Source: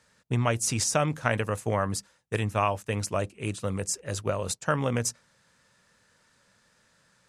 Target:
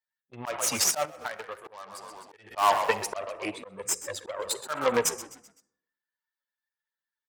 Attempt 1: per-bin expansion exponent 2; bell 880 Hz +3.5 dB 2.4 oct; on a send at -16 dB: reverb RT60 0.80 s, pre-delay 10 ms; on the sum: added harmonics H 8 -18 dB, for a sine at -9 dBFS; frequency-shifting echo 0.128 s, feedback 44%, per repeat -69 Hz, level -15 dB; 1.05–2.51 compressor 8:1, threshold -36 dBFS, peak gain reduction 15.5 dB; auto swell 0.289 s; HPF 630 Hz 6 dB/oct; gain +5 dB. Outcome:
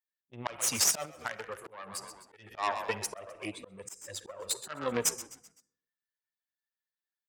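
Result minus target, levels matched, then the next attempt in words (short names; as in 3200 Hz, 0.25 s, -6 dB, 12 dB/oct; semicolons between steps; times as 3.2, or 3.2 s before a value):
1000 Hz band -4.5 dB
per-bin expansion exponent 2; bell 880 Hz +15 dB 2.4 oct; on a send at -16 dB: reverb RT60 0.80 s, pre-delay 10 ms; on the sum: added harmonics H 8 -18 dB, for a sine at -9 dBFS; frequency-shifting echo 0.128 s, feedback 44%, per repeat -69 Hz, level -15 dB; 1.05–2.51 compressor 8:1, threshold -36 dBFS, peak gain reduction 20.5 dB; auto swell 0.289 s; HPF 630 Hz 6 dB/oct; gain +5 dB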